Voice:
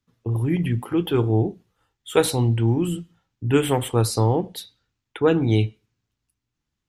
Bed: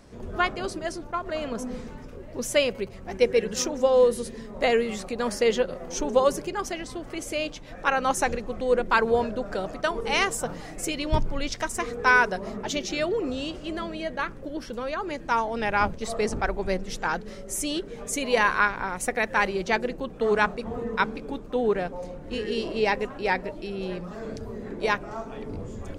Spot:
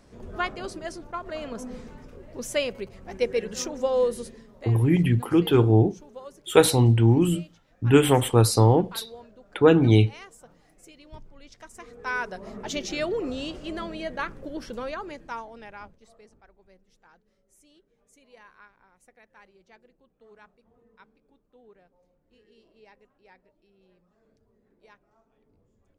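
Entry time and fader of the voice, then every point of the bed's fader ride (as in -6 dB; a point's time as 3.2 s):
4.40 s, +2.0 dB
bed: 4.23 s -4 dB
4.76 s -21.5 dB
11.36 s -21.5 dB
12.79 s -1.5 dB
14.84 s -1.5 dB
16.38 s -31 dB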